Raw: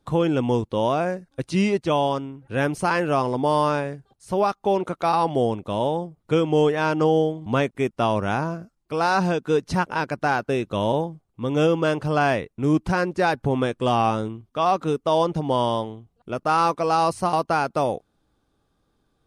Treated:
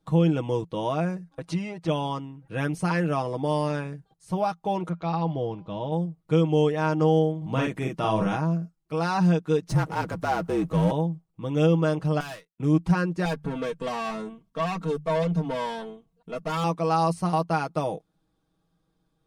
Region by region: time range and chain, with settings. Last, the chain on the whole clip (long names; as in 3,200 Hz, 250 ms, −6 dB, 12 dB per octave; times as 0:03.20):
0:01.29–0:01.88: parametric band 870 Hz +10.5 dB 2.7 octaves + downward compressor, threshold −25 dBFS
0:04.89–0:05.92: low-pass filter 5,300 Hz 24 dB per octave + low-shelf EQ 140 Hz +8.5 dB + tuned comb filter 200 Hz, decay 1.6 s, mix 40%
0:07.37–0:08.36: transient designer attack 0 dB, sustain +9 dB + double-tracking delay 46 ms −3 dB
0:09.69–0:10.91: parametric band 3,200 Hz −10 dB 1.6 octaves + frequency shifter −39 Hz + power curve on the samples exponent 0.7
0:12.20–0:12.60: spectral tilt +4 dB per octave + tube saturation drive 29 dB, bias 0.55 + expander for the loud parts 2.5 to 1, over −47 dBFS
0:13.25–0:16.64: mains-hum notches 50/100/150/200 Hz + tube saturation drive 22 dB, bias 0.35 + comb filter 4.4 ms, depth 95%
whole clip: parametric band 170 Hz +10 dB 0.25 octaves; notch filter 1,500 Hz, Q 21; comb filter 6.3 ms, depth 60%; level −6.5 dB